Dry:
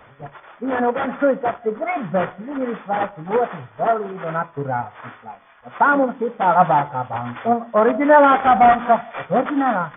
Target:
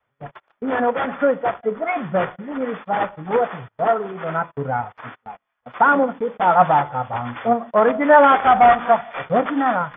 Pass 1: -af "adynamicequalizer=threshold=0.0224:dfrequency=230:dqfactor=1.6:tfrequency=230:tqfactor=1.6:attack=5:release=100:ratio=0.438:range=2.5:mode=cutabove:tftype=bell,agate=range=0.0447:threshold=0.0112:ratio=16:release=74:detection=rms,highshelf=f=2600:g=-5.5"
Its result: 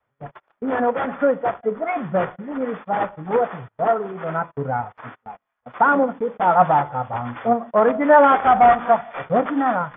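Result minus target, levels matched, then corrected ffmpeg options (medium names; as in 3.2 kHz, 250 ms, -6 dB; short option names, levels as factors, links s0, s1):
4 kHz band -5.0 dB
-af "adynamicequalizer=threshold=0.0224:dfrequency=230:dqfactor=1.6:tfrequency=230:tqfactor=1.6:attack=5:release=100:ratio=0.438:range=2.5:mode=cutabove:tftype=bell,agate=range=0.0447:threshold=0.0112:ratio=16:release=74:detection=rms,highshelf=f=2600:g=4"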